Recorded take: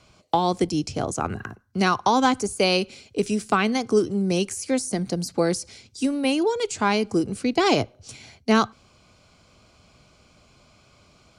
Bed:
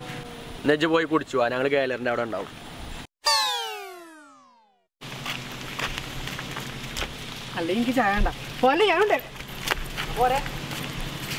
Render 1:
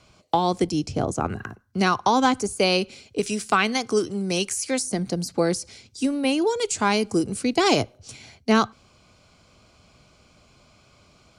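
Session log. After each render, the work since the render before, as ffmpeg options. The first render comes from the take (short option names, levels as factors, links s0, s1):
-filter_complex "[0:a]asettb=1/sr,asplit=3[s0][s1][s2];[s0]atrim=end=0.864[s3];[s1]atrim=start=0.86:end=1.27,asetpts=PTS-STARTPTS,afade=t=in:d=0.004:c=qsin,afade=t=out:st=0.406:d=0.004:c=qsin,tiltshelf=f=970:g=3.5[s4];[s2]atrim=start=1.266[s5];[s3][s4]acrossfade=d=0.004:c1=hsin:c2=qsin[s6];[s6][s5]acrossfade=d=0.004:c1=qsin:c2=hsin,asettb=1/sr,asplit=3[s7][s8][s9];[s7]atrim=end=3.204[s10];[s8]atrim=start=3.2:end=4.83,asetpts=PTS-STARTPTS,afade=t=in:d=0.004:c=qsin,afade=t=out:st=1.626:d=0.004:c=qsin,tiltshelf=f=750:g=-4.5[s11];[s9]atrim=start=4.826[s12];[s10][s11]acrossfade=d=0.004:c1=hsin:c2=qsin[s13];[s13][s12]acrossfade=d=0.004:c1=qsin:c2=hsin,asettb=1/sr,asplit=3[s14][s15][s16];[s14]atrim=end=6.434[s17];[s15]atrim=start=6.43:end=7.98,asetpts=PTS-STARTPTS,afade=t=in:d=0.004:c=qsin,afade=t=out:st=1.546:d=0.004:c=qsin,equalizer=f=10000:w=0.63:g=7.5[s18];[s16]atrim=start=7.976[s19];[s17][s18]acrossfade=d=0.004:c1=hsin:c2=qsin[s20];[s20][s19]acrossfade=d=0.004:c1=qsin:c2=hsin"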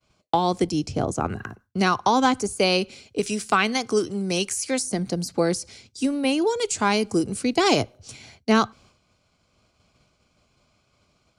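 -af "agate=range=0.0224:threshold=0.00398:ratio=3:detection=peak"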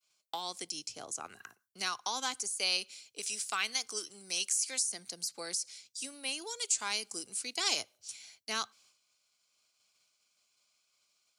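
-filter_complex "[0:a]acrossover=split=9100[s0][s1];[s1]acompressor=threshold=0.00447:ratio=4:attack=1:release=60[s2];[s0][s2]amix=inputs=2:normalize=0,aderivative"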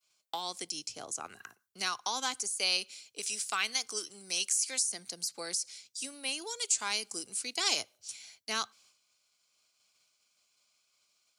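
-af "volume=1.19"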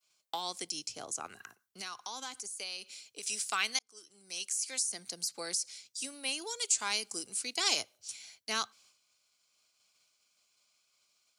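-filter_complex "[0:a]asettb=1/sr,asplit=3[s0][s1][s2];[s0]atrim=end=1.374[s3];[s1]atrim=start=1.37:end=3.27,asetpts=PTS-STARTPTS,afade=t=in:d=0.004:c=qsin,afade=t=out:st=1.896:d=0.004:c=qsin,acompressor=threshold=0.00891:ratio=2.5:attack=3.2:release=140:knee=1:detection=peak[s4];[s2]atrim=start=3.266[s5];[s3][s4]acrossfade=d=0.004:c1=hsin:c2=qsin[s6];[s6][s5]acrossfade=d=0.004:c1=qsin:c2=hsin,asplit=2[s7][s8];[s7]atrim=end=3.79,asetpts=PTS-STARTPTS,afade=t=out:st=3.786:d=0.004:c=hsin[s9];[s8]atrim=start=3.79,asetpts=PTS-STARTPTS,afade=t=in:d=1.32[s10];[s9][s10]concat=n=2:v=0:a=1"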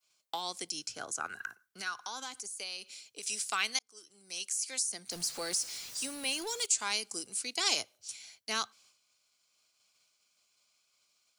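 -filter_complex "[0:a]asettb=1/sr,asplit=3[s0][s1][s2];[s0]atrim=end=0.804[s3];[s1]atrim=start=0.8:end=2.22,asetpts=PTS-STARTPTS,afade=t=in:d=0.004:c=qsin,afade=t=out:st=1.416:d=0.004:c=qsin,equalizer=f=1500:w=3.9:g=13.5[s4];[s2]atrim=start=2.216[s5];[s3][s4]acrossfade=d=0.004:c1=hsin:c2=qsin[s6];[s6][s5]acrossfade=d=0.004:c1=qsin:c2=hsin,asettb=1/sr,asplit=3[s7][s8][s9];[s7]atrim=end=5.114[s10];[s8]atrim=start=5.11:end=6.66,asetpts=PTS-STARTPTS,afade=t=in:d=0.004:c=qsin,afade=t=out:st=1.546:d=0.004:c=qsin,aeval=exprs='val(0)+0.5*0.00944*sgn(val(0))':c=same[s11];[s9]atrim=start=6.656[s12];[s10][s11]acrossfade=d=0.004:c1=hsin:c2=qsin[s13];[s13][s12]acrossfade=d=0.004:c1=qsin:c2=hsin"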